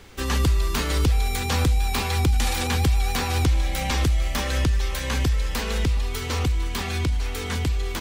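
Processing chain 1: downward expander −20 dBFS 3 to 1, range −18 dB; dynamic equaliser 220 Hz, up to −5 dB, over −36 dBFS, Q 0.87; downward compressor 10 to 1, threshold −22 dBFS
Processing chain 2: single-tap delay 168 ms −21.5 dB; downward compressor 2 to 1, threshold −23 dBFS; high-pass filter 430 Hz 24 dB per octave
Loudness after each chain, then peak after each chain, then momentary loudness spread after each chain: −29.0, −31.5 LKFS; −15.5, −15.0 dBFS; 4, 5 LU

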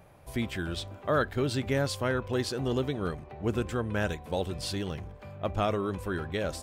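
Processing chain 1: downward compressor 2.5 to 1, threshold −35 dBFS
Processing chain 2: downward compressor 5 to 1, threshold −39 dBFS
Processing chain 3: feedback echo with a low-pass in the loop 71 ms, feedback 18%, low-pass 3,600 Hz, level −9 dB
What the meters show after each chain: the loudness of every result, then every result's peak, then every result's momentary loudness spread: −37.5, −42.5, −31.0 LKFS; −22.5, −26.5, −14.5 dBFS; 4, 3, 7 LU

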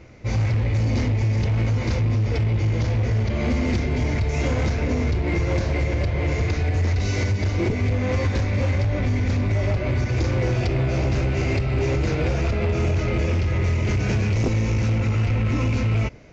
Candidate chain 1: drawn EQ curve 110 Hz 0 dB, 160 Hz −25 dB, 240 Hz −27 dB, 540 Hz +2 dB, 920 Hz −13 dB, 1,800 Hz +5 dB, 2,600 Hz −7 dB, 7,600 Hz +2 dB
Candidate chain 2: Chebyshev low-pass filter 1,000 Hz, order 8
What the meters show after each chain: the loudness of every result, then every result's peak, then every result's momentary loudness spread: −24.0, −23.5 LKFS; −12.0, −15.0 dBFS; 3, 2 LU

